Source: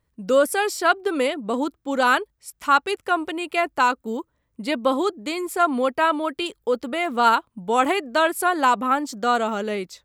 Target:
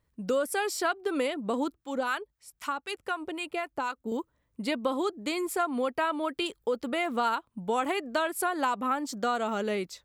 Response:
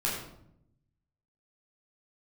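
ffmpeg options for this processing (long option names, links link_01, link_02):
-filter_complex "[0:a]acompressor=threshold=-23dB:ratio=4,asettb=1/sr,asplit=3[link_01][link_02][link_03];[link_01]atrim=end=1.744[link_04];[link_02]atrim=start=1.74:end=4.12,asetpts=PTS-STARTPTS,afade=type=in:duration=0.004:curve=qsin,afade=type=out:start_time=2.376:duration=0.004:curve=qsin,acrossover=split=830[link_05][link_06];[link_05]aeval=exprs='val(0)*(1-0.7/2+0.7/2*cos(2*PI*3.9*n/s))':channel_layout=same[link_07];[link_06]aeval=exprs='val(0)*(1-0.7/2-0.7/2*cos(2*PI*3.9*n/s))':channel_layout=same[link_08];[link_07][link_08]amix=inputs=2:normalize=0[link_09];[link_03]atrim=start=4.116[link_10];[link_04][link_09]acrossfade=duration=0.004:curve1=hsin:curve2=qsin[link_11];[link_11][link_10]acrossfade=duration=0.004:curve1=qsin:curve2=hsin,volume=-2.5dB"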